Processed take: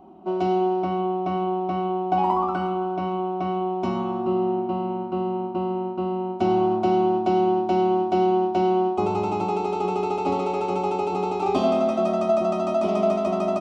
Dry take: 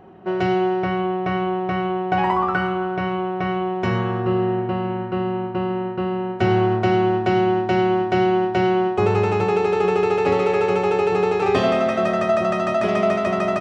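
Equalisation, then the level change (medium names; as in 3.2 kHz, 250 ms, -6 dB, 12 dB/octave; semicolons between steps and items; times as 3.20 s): peaking EQ 350 Hz +5 dB 2.9 oct; static phaser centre 470 Hz, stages 6; -3.5 dB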